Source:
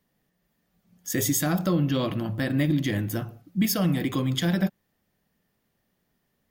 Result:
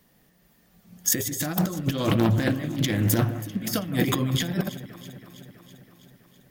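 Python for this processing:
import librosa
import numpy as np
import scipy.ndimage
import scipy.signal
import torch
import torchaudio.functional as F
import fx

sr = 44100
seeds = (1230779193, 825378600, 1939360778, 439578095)

y = fx.high_shelf(x, sr, hz=4800.0, db=3.5)
y = fx.over_compress(y, sr, threshold_db=-29.0, ratio=-0.5)
y = fx.echo_alternate(y, sr, ms=163, hz=2100.0, feedback_pct=80, wet_db=-14.0)
y = fx.doppler_dist(y, sr, depth_ms=0.26, at=(1.28, 3.74))
y = F.gain(torch.from_numpy(y), 5.5).numpy()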